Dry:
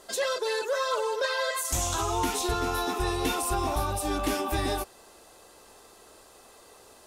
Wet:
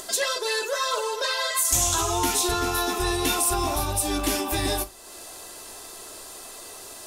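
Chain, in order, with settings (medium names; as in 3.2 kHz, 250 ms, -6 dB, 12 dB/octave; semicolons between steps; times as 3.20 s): treble shelf 3.1 kHz +10 dB; upward compressor, threshold -33 dBFS; on a send: reverberation RT60 0.25 s, pre-delay 3 ms, DRR 7 dB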